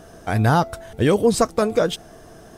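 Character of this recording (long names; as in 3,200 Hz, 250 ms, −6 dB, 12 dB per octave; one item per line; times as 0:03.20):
background noise floor −45 dBFS
spectral slope −6.0 dB per octave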